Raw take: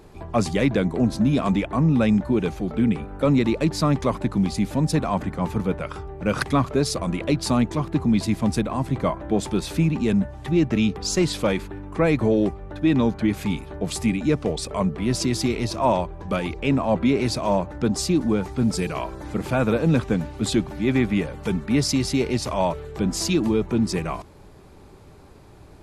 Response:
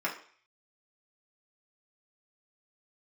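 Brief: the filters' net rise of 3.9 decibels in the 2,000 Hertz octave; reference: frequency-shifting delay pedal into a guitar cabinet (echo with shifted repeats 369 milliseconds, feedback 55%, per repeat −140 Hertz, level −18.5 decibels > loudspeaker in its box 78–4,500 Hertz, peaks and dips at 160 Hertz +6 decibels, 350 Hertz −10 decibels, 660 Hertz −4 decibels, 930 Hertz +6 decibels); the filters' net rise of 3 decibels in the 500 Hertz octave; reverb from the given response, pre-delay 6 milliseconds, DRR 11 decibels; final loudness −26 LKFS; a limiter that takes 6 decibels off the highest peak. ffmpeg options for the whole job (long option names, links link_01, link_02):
-filter_complex "[0:a]equalizer=frequency=500:width_type=o:gain=7,equalizer=frequency=2000:width_type=o:gain=4.5,alimiter=limit=-10dB:level=0:latency=1,asplit=2[link_01][link_02];[1:a]atrim=start_sample=2205,adelay=6[link_03];[link_02][link_03]afir=irnorm=-1:irlink=0,volume=-19dB[link_04];[link_01][link_04]amix=inputs=2:normalize=0,asplit=6[link_05][link_06][link_07][link_08][link_09][link_10];[link_06]adelay=369,afreqshift=-140,volume=-18.5dB[link_11];[link_07]adelay=738,afreqshift=-280,volume=-23.7dB[link_12];[link_08]adelay=1107,afreqshift=-420,volume=-28.9dB[link_13];[link_09]adelay=1476,afreqshift=-560,volume=-34.1dB[link_14];[link_10]adelay=1845,afreqshift=-700,volume=-39.3dB[link_15];[link_05][link_11][link_12][link_13][link_14][link_15]amix=inputs=6:normalize=0,highpass=78,equalizer=frequency=160:width_type=q:width=4:gain=6,equalizer=frequency=350:width_type=q:width=4:gain=-10,equalizer=frequency=660:width_type=q:width=4:gain=-4,equalizer=frequency=930:width_type=q:width=4:gain=6,lowpass=frequency=4500:width=0.5412,lowpass=frequency=4500:width=1.3066,volume=-4dB"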